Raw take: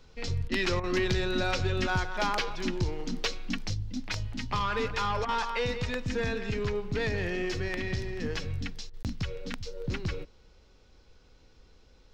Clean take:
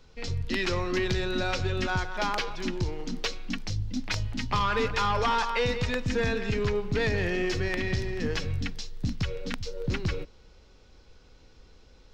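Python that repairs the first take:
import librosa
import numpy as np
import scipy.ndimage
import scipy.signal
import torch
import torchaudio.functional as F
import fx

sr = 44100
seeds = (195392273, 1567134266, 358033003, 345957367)

y = fx.fix_declip(x, sr, threshold_db=-17.5)
y = fx.fix_interpolate(y, sr, at_s=(9.03,), length_ms=18.0)
y = fx.fix_interpolate(y, sr, at_s=(0.48, 0.8, 5.25, 8.9), length_ms=35.0)
y = fx.gain(y, sr, db=fx.steps((0.0, 0.0), (3.74, 3.5)))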